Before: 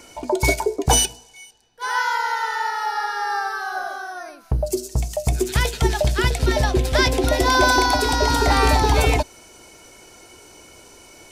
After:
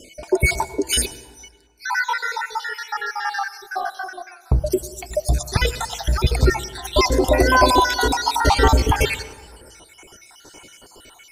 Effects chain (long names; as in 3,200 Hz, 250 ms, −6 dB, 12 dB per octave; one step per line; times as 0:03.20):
time-frequency cells dropped at random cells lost 60%
hum removal 165.2 Hz, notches 5
on a send: convolution reverb RT60 1.6 s, pre-delay 83 ms, DRR 16 dB
on the sum: level +4 dB